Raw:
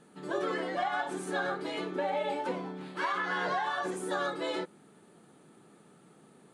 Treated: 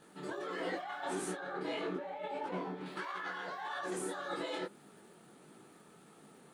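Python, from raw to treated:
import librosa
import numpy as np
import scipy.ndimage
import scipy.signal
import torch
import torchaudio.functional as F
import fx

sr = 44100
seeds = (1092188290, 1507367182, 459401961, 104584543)

y = fx.low_shelf(x, sr, hz=380.0, db=-5.0)
y = fx.over_compress(y, sr, threshold_db=-38.0, ratio=-1.0)
y = fx.dmg_crackle(y, sr, seeds[0], per_s=370.0, level_db=-57.0)
y = fx.high_shelf(y, sr, hz=3500.0, db=-9.5, at=(1.35, 2.86))
y = fx.detune_double(y, sr, cents=56)
y = y * 10.0 ** (2.0 / 20.0)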